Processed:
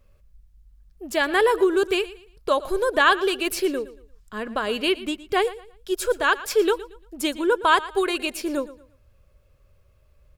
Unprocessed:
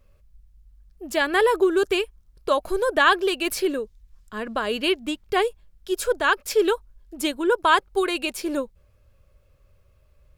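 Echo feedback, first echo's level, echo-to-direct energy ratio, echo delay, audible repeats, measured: 30%, −17.0 dB, −16.5 dB, 115 ms, 2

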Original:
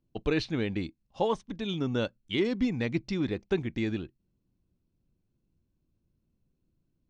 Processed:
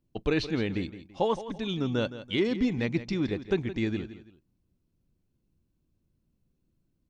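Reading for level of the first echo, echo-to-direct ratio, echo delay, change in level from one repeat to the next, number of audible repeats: −13.5 dB, −13.0 dB, 167 ms, −10.0 dB, 2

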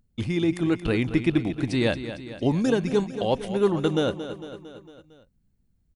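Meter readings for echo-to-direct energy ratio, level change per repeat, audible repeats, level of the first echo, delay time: −9.5 dB, −4.5 dB, 5, −11.5 dB, 227 ms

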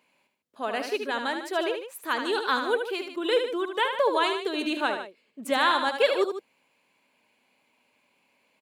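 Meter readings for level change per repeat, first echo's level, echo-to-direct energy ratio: −5.0 dB, −7.0 dB, −6.0 dB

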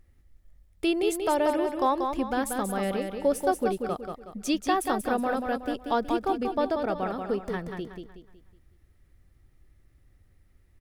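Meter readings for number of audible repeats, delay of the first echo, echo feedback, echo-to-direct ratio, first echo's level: 4, 185 ms, 38%, −5.0 dB, −5.5 dB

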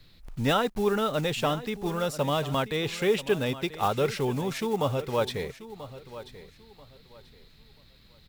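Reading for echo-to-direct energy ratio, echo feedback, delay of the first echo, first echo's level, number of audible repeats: −14.5 dB, 26%, 986 ms, −15.0 dB, 2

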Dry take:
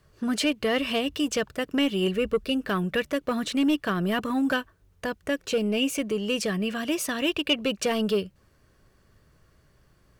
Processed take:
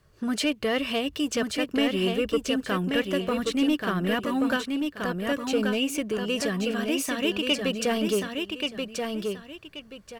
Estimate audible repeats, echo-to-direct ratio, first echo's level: 2, −4.0 dB, −4.5 dB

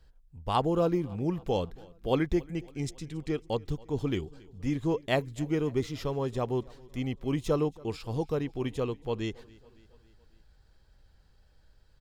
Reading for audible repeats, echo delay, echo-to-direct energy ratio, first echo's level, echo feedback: 3, 277 ms, −22.0 dB, −23.5 dB, 58%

